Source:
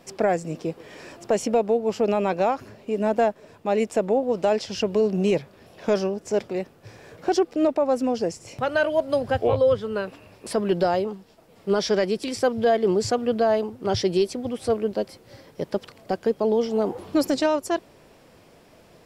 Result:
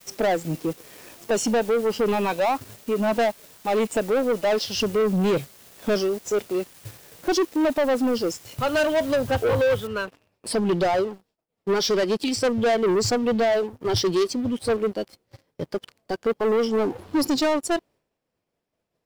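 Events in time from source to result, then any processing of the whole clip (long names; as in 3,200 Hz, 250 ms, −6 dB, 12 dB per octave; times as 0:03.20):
0:08.73–0:09.16: converter with a step at zero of −35 dBFS
0:09.87: noise floor change −43 dB −69 dB
whole clip: downward expander −45 dBFS; noise reduction from a noise print of the clip's start 9 dB; leveller curve on the samples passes 3; level −4.5 dB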